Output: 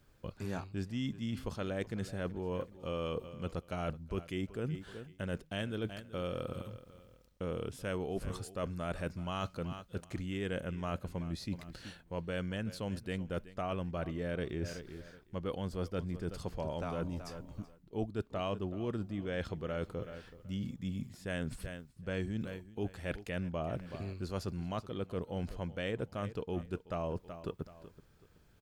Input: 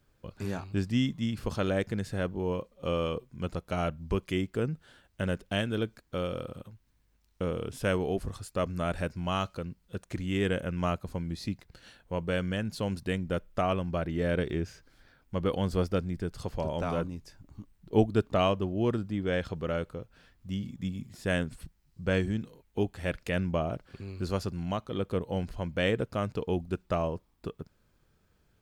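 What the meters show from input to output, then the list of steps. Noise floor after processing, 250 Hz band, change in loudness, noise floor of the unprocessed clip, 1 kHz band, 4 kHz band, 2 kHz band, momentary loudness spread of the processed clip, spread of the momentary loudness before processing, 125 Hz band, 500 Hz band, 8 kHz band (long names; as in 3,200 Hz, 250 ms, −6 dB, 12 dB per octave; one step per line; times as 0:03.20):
−64 dBFS, −7.0 dB, −7.5 dB, −69 dBFS, −7.5 dB, −7.5 dB, −7.5 dB, 6 LU, 11 LU, −6.5 dB, −7.5 dB, −5.0 dB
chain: repeating echo 378 ms, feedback 29%, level −19 dB
reversed playback
downward compressor 4 to 1, threshold −38 dBFS, peak gain reduction 17 dB
reversed playback
level +2.5 dB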